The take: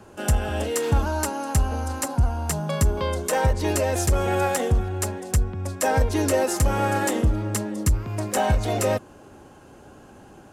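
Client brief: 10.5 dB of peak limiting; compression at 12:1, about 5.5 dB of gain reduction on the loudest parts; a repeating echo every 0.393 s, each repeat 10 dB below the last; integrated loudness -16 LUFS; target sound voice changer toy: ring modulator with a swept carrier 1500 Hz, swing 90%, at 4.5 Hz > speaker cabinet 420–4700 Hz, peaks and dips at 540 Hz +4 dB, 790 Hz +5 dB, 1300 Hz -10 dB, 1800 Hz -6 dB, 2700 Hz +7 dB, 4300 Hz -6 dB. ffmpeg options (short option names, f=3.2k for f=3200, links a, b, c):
-af "acompressor=threshold=-20dB:ratio=12,alimiter=limit=-22.5dB:level=0:latency=1,aecho=1:1:393|786|1179|1572:0.316|0.101|0.0324|0.0104,aeval=exprs='val(0)*sin(2*PI*1500*n/s+1500*0.9/4.5*sin(2*PI*4.5*n/s))':c=same,highpass=420,equalizer=f=540:t=q:w=4:g=4,equalizer=f=790:t=q:w=4:g=5,equalizer=f=1.3k:t=q:w=4:g=-10,equalizer=f=1.8k:t=q:w=4:g=-6,equalizer=f=2.7k:t=q:w=4:g=7,equalizer=f=4.3k:t=q:w=4:g=-6,lowpass=f=4.7k:w=0.5412,lowpass=f=4.7k:w=1.3066,volume=14dB"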